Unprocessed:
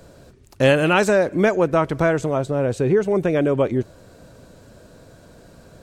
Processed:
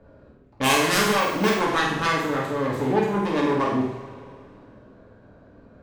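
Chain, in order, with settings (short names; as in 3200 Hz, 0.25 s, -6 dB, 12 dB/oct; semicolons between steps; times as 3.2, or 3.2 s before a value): self-modulated delay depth 0.74 ms; low-pass opened by the level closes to 1500 Hz, open at -18 dBFS; on a send: flutter echo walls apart 8.6 m, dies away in 0.52 s; on the sum: two-slope reverb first 0.49 s, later 2.6 s, from -15 dB, DRR -2.5 dB; 1.2–1.61 careless resampling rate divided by 2×, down filtered, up hold; gain -8.5 dB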